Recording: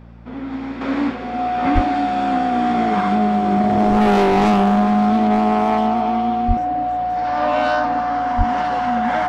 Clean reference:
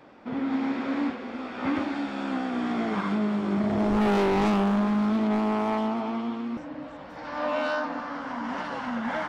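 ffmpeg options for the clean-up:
-filter_complex "[0:a]bandreject=f=57.7:t=h:w=4,bandreject=f=115.4:t=h:w=4,bandreject=f=173.1:t=h:w=4,bandreject=f=230.8:t=h:w=4,bandreject=f=730:w=30,asplit=3[a][b][c];[a]afade=t=out:st=1.74:d=0.02[d];[b]highpass=f=140:w=0.5412,highpass=f=140:w=1.3066,afade=t=in:st=1.74:d=0.02,afade=t=out:st=1.86:d=0.02[e];[c]afade=t=in:st=1.86:d=0.02[f];[d][e][f]amix=inputs=3:normalize=0,asplit=3[g][h][i];[g]afade=t=out:st=6.47:d=0.02[j];[h]highpass=f=140:w=0.5412,highpass=f=140:w=1.3066,afade=t=in:st=6.47:d=0.02,afade=t=out:st=6.59:d=0.02[k];[i]afade=t=in:st=6.59:d=0.02[l];[j][k][l]amix=inputs=3:normalize=0,asplit=3[m][n][o];[m]afade=t=out:st=8.37:d=0.02[p];[n]highpass=f=140:w=0.5412,highpass=f=140:w=1.3066,afade=t=in:st=8.37:d=0.02,afade=t=out:st=8.49:d=0.02[q];[o]afade=t=in:st=8.49:d=0.02[r];[p][q][r]amix=inputs=3:normalize=0,asetnsamples=n=441:p=0,asendcmd='0.81 volume volume -7.5dB',volume=0dB"

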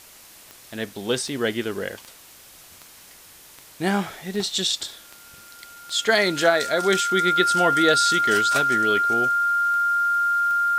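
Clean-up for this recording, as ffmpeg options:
-af "adeclick=t=4,bandreject=f=1.4k:w=30,afftdn=nr=21:nf=-48"

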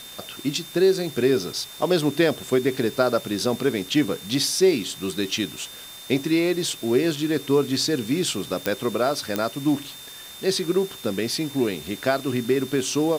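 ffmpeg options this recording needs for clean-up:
-af "adeclick=t=4,bandreject=f=3.6k:w=30,afwtdn=0.0079"

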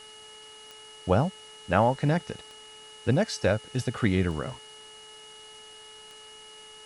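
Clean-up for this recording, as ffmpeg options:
-af "adeclick=t=4,bandreject=f=431.5:t=h:w=4,bandreject=f=863:t=h:w=4,bandreject=f=1.2945k:t=h:w=4,bandreject=f=1.726k:t=h:w=4,bandreject=f=2.1575k:t=h:w=4,bandreject=f=2.9k:w=30,afftdn=nr=23:nf=-48"

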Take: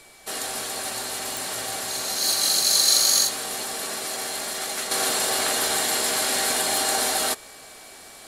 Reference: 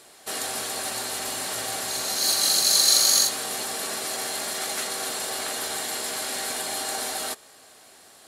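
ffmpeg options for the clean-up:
-af "adeclick=t=4,bandreject=f=2.3k:w=30,agate=range=-21dB:threshold=-36dB,asetnsamples=n=441:p=0,asendcmd='4.91 volume volume -6.5dB',volume=0dB"

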